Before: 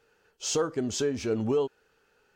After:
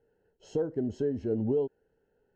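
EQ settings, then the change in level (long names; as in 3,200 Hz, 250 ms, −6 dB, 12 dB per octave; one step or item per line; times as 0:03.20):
moving average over 37 samples
0.0 dB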